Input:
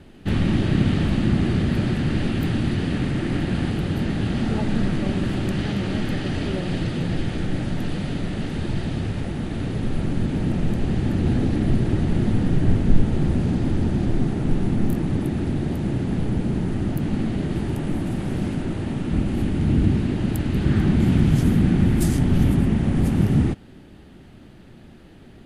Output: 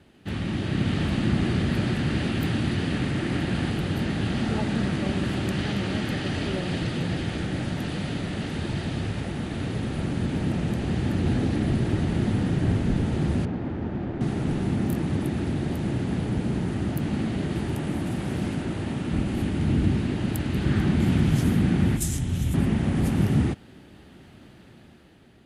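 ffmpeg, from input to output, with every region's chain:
-filter_complex "[0:a]asettb=1/sr,asplit=3[a][b][c];[a]atrim=end=13.454[d];[b]atrim=start=13.45:end=14.21,asetpts=PTS-STARTPTS,afade=t=in:d=0.004:c=qsin,afade=t=out:st=0.756:d=0.004:c=qsin,lowshelf=f=260:g=-7.5,adynamicsmooth=sensitivity=1:basefreq=1.6k[e];[c]atrim=start=14.206[f];[d][e]acrossfade=d=0.004:c1=hsin:c2=qsin[g];[g][f]acrossfade=d=0.004:c1=qsin:c2=hsin,asettb=1/sr,asplit=3[h][i][j];[h]atrim=end=21.964[k];[i]atrim=start=21.96:end=22.54,asetpts=PTS-STARTPTS,afade=t=in:d=0.004:c=qsin,afade=t=out:st=0.576:d=0.004:c=qsin,equalizer=f=7.3k:w=3:g=6,acrossover=split=130|3000[l][m][n];[m]acompressor=threshold=-31dB:ratio=4:attack=3.2:release=140:knee=2.83:detection=peak[o];[l][o][n]amix=inputs=3:normalize=0,bandreject=f=4.6k:w=8.6[p];[j]atrim=start=22.536[q];[k][p]acrossfade=d=0.004:c1=hsin:c2=qsin[r];[r][q]acrossfade=d=0.004:c1=qsin:c2=hsin,highpass=68,equalizer=f=200:w=0.35:g=-4,dynaudnorm=f=180:g=9:m=6dB,volume=-5dB"

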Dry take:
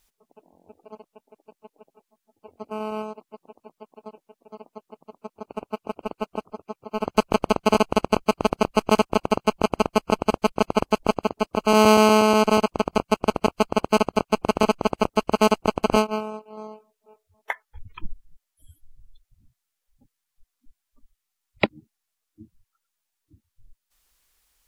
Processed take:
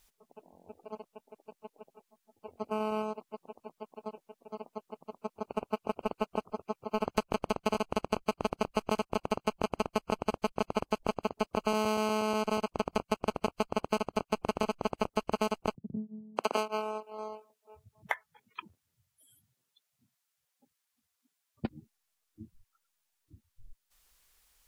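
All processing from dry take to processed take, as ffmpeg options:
-filter_complex "[0:a]asettb=1/sr,asplit=3[a][b][c];[a]atrim=end=15.754[d];[b]atrim=start=15.75:end=21.65,asetpts=PTS-STARTPTS,afade=t=in:d=0.004:c=qsin,afade=t=out:st=5.896:d=0.004:c=qsin,highpass=f=110:w=0.5412,highpass=f=110:w=1.3066,lowshelf=f=250:g=-7.5,acrossover=split=200[e][f];[f]adelay=610[g];[e][g]amix=inputs=2:normalize=0,atrim=end_sample=260190[h];[c]atrim=start=21.646[i];[d][h]acrossfade=d=0.004:c1=hsin:c2=qsin[j];[j][i]acrossfade=d=0.004:c1=qsin:c2=hsin,equalizer=f=300:t=o:w=0.26:g=-6,acompressor=threshold=-26dB:ratio=6"

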